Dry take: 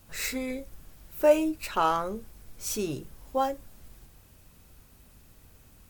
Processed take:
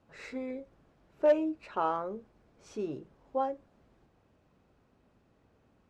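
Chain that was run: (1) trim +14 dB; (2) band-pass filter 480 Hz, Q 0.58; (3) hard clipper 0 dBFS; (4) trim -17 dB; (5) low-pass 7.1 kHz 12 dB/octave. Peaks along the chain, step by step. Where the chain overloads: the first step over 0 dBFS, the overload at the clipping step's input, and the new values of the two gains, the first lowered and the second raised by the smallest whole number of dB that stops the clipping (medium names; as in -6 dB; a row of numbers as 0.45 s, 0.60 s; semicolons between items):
+4.5 dBFS, +4.0 dBFS, 0.0 dBFS, -17.0 dBFS, -17.0 dBFS; step 1, 4.0 dB; step 1 +10 dB, step 4 -13 dB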